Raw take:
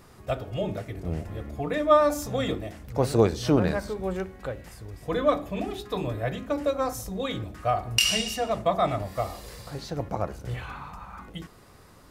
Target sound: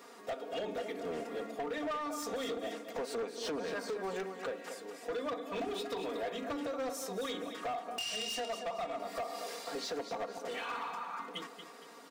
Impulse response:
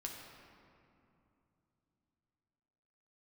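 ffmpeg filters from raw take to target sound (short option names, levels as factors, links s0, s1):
-af "highpass=f=290:w=0.5412,highpass=f=290:w=1.3066,aecho=1:1:4.3:0.78,acompressor=threshold=0.0282:ratio=20,aecho=1:1:232|464|696|928:0.316|0.104|0.0344|0.0114,volume=44.7,asoftclip=hard,volume=0.0224,equalizer=f=12000:w=1.6:g=-8.5"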